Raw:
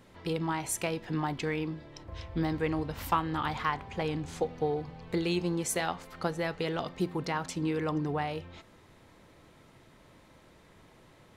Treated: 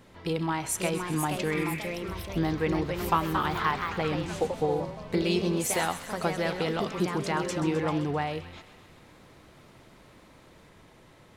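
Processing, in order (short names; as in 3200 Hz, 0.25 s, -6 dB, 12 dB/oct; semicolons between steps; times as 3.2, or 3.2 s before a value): echoes that change speed 0.568 s, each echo +2 st, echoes 3, each echo -6 dB; spectral repair 1.59–1.87, 1400–3000 Hz; on a send: thin delay 0.13 s, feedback 66%, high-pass 1600 Hz, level -12 dB; on the sum: gain +2.5 dB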